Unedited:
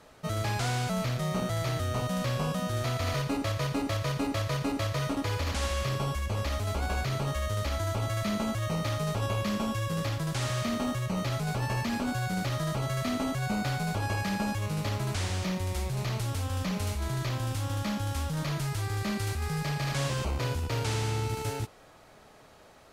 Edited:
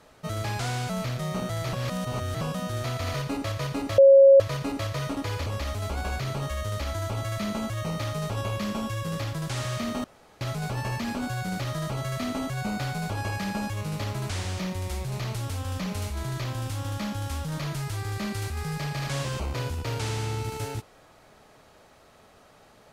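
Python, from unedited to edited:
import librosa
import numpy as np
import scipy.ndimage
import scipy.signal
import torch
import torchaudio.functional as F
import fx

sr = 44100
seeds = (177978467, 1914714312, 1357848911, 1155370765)

y = fx.edit(x, sr, fx.reverse_span(start_s=1.73, length_s=0.68),
    fx.bleep(start_s=3.98, length_s=0.42, hz=547.0, db=-10.0),
    fx.cut(start_s=5.46, length_s=0.85),
    fx.room_tone_fill(start_s=10.89, length_s=0.37), tone=tone)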